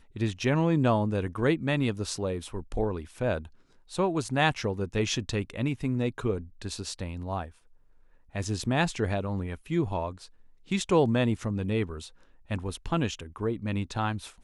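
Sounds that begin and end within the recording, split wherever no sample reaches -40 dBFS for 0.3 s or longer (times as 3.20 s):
3.91–7.49 s
8.35–10.26 s
10.71–12.08 s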